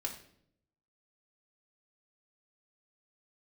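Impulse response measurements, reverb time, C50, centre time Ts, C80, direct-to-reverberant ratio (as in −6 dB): 0.65 s, 9.0 dB, 16 ms, 12.5 dB, 0.5 dB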